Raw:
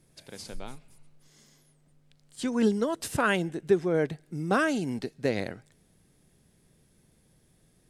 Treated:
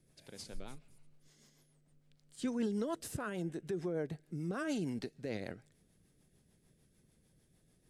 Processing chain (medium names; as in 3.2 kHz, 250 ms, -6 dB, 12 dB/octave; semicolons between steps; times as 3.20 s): peak limiter -21.5 dBFS, peak gain reduction 10.5 dB; 3.01–4.65 s: dynamic bell 2.8 kHz, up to -6 dB, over -47 dBFS, Q 0.84; rotary cabinet horn 6.7 Hz; trim -4.5 dB